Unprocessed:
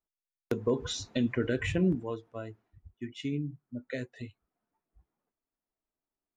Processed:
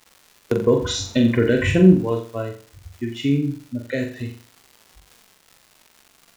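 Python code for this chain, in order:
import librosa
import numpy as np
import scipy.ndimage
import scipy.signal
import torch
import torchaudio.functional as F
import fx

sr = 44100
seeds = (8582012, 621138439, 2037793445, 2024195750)

y = fx.dmg_crackle(x, sr, seeds[0], per_s=260.0, level_db=-47.0)
y = fx.room_flutter(y, sr, wall_m=7.4, rt60_s=0.41)
y = fx.hpss(y, sr, part='harmonic', gain_db=5)
y = F.gain(torch.from_numpy(y), 7.5).numpy()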